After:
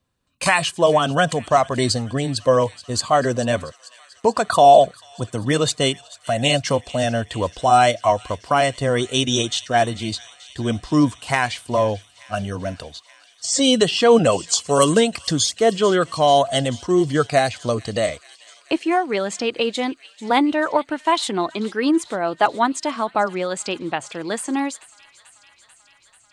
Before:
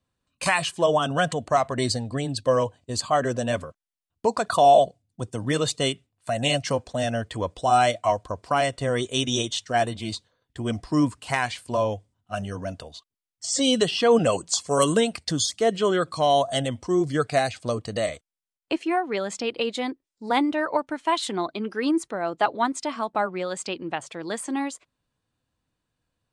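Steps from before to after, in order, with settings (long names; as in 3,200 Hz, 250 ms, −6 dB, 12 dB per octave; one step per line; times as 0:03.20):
delay with a high-pass on its return 439 ms, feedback 76%, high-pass 2,200 Hz, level −18 dB
level +5 dB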